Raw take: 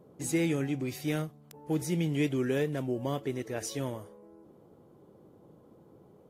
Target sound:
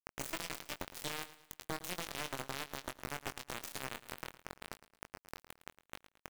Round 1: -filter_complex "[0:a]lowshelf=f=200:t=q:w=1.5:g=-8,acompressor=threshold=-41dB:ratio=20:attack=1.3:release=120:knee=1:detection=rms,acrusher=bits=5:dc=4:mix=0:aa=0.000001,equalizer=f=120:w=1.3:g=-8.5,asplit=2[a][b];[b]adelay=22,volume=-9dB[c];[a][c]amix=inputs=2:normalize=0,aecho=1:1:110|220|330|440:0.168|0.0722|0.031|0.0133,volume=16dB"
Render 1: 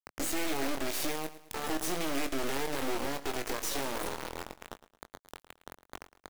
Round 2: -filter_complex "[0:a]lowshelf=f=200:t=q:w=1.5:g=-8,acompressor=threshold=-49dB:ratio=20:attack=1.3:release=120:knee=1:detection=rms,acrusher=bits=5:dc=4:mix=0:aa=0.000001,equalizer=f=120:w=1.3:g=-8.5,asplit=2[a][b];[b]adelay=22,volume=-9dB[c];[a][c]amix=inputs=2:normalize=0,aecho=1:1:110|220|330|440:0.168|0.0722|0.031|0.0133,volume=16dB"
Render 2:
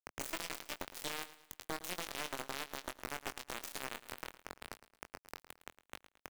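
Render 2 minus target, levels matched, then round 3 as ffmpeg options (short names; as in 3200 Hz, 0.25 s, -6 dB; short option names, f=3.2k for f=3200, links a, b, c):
125 Hz band -6.0 dB
-filter_complex "[0:a]lowshelf=f=200:t=q:w=1.5:g=-8,acompressor=threshold=-49dB:ratio=20:attack=1.3:release=120:knee=1:detection=rms,acrusher=bits=5:dc=4:mix=0:aa=0.000001,asplit=2[a][b];[b]adelay=22,volume=-9dB[c];[a][c]amix=inputs=2:normalize=0,aecho=1:1:110|220|330|440:0.168|0.0722|0.031|0.0133,volume=16dB"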